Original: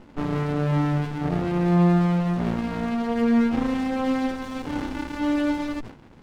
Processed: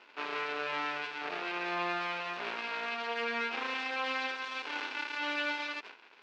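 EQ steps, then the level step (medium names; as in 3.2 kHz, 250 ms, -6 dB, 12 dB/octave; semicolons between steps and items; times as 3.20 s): cabinet simulation 320–4500 Hz, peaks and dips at 410 Hz +9 dB, 660 Hz +3 dB, 1 kHz +6 dB, 1.5 kHz +7 dB, 2.5 kHz +9 dB; differentiator; +8.0 dB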